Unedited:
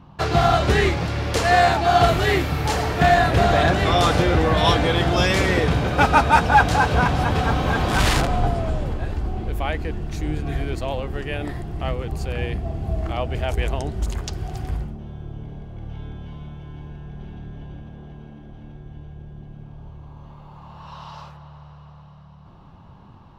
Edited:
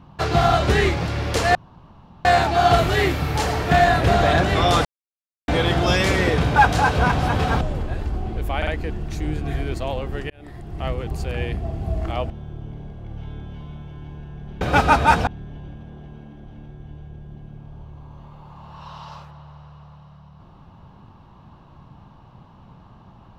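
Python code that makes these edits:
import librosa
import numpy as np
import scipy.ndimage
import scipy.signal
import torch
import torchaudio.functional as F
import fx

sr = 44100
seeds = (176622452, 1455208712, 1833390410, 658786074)

y = fx.edit(x, sr, fx.insert_room_tone(at_s=1.55, length_s=0.7),
    fx.silence(start_s=4.15, length_s=0.63),
    fx.move(start_s=5.86, length_s=0.66, to_s=17.33),
    fx.cut(start_s=7.57, length_s=1.15),
    fx.stutter(start_s=9.68, slice_s=0.05, count=3),
    fx.fade_in_span(start_s=11.31, length_s=0.61),
    fx.cut(start_s=13.31, length_s=1.71), tone=tone)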